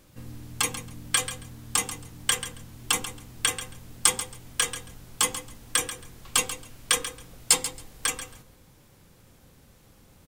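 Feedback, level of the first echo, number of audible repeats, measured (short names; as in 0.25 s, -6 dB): 17%, -12.0 dB, 2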